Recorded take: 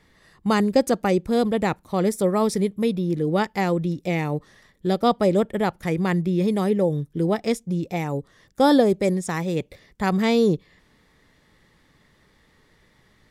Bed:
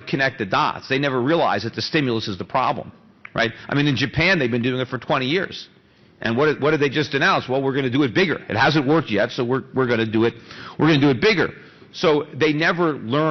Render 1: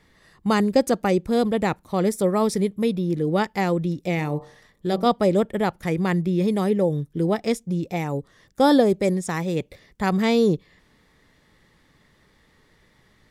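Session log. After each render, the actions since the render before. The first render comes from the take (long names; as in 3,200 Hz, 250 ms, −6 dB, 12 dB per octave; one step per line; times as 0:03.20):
0:04.15–0:05.06: hum removal 46.24 Hz, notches 26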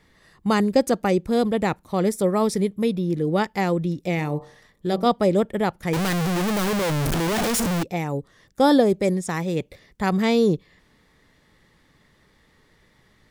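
0:05.93–0:07.83: sign of each sample alone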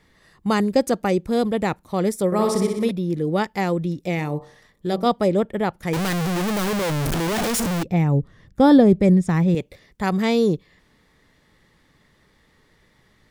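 0:02.26–0:02.91: flutter between parallel walls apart 10.6 metres, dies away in 0.86 s
0:05.28–0:05.74: bass and treble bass 0 dB, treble −5 dB
0:07.85–0:09.55: bass and treble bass +13 dB, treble −8 dB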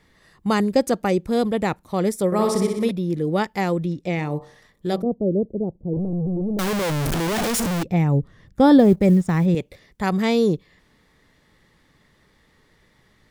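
0:03.86–0:04.31: high-frequency loss of the air 51 metres
0:05.02–0:06.59: inverse Chebyshev low-pass filter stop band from 1,700 Hz, stop band 60 dB
0:08.79–0:09.46: mu-law and A-law mismatch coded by A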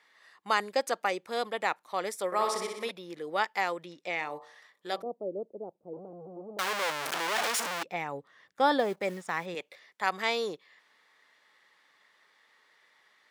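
high-pass filter 900 Hz 12 dB per octave
high-shelf EQ 6,000 Hz −10 dB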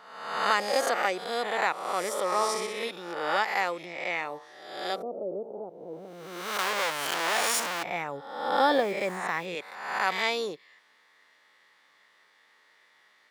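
peak hold with a rise ahead of every peak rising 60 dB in 0.95 s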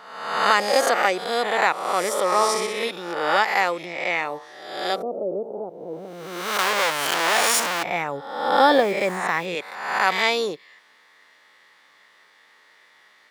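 level +7 dB
brickwall limiter −3 dBFS, peak gain reduction 1 dB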